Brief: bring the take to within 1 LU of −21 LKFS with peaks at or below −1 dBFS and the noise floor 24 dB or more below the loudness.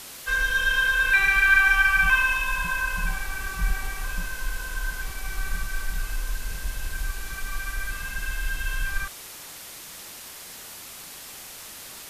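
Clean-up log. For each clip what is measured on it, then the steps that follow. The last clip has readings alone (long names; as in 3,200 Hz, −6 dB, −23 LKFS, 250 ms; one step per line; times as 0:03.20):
background noise floor −42 dBFS; target noise floor −49 dBFS; integrated loudness −24.5 LKFS; sample peak −7.5 dBFS; target loudness −21.0 LKFS
→ broadband denoise 7 dB, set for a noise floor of −42 dBFS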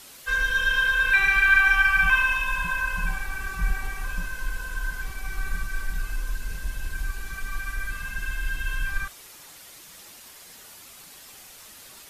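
background noise floor −47 dBFS; target noise floor −49 dBFS
→ broadband denoise 6 dB, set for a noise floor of −47 dBFS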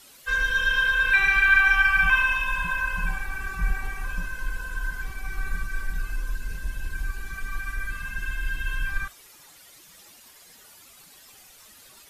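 background noise floor −51 dBFS; integrated loudness −24.5 LKFS; sample peak −7.5 dBFS; target loudness −21.0 LKFS
→ level +3.5 dB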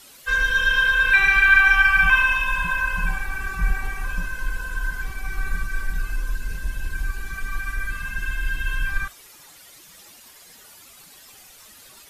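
integrated loudness −21.0 LKFS; sample peak −4.0 dBFS; background noise floor −48 dBFS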